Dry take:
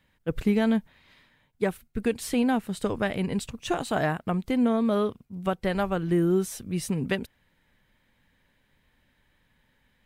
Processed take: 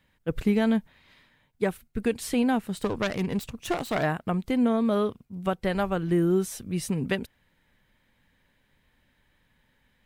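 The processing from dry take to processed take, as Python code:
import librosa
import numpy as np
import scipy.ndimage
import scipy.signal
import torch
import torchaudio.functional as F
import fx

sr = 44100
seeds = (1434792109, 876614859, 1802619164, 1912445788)

y = fx.self_delay(x, sr, depth_ms=0.26, at=(2.77, 4.03))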